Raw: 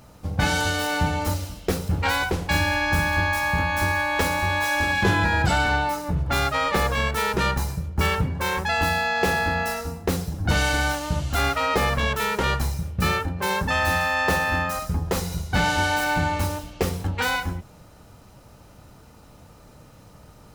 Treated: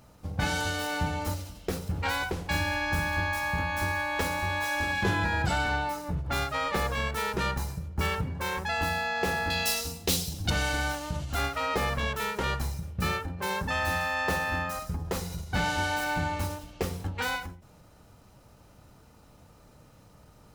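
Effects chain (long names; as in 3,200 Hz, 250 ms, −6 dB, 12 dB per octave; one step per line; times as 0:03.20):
0:09.50–0:10.50: high shelf with overshoot 2,300 Hz +12.5 dB, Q 1.5
every ending faded ahead of time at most 120 dB per second
level −6.5 dB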